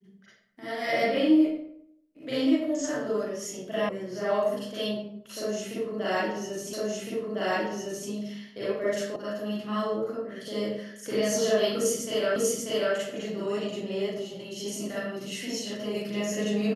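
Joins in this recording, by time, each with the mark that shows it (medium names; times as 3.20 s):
3.89 s: sound stops dead
6.73 s: repeat of the last 1.36 s
9.16 s: sound stops dead
12.36 s: repeat of the last 0.59 s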